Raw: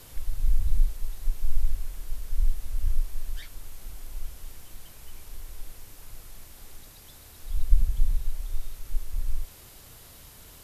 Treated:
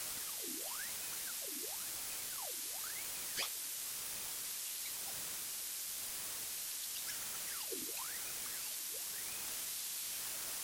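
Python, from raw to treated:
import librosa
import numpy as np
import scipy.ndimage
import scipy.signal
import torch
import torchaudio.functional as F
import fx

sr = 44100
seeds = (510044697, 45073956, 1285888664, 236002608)

y = fx.bandpass_q(x, sr, hz=6900.0, q=0.62)
y = fx.ring_lfo(y, sr, carrier_hz=1400.0, swing_pct=80, hz=0.96)
y = y * librosa.db_to_amplitude(14.5)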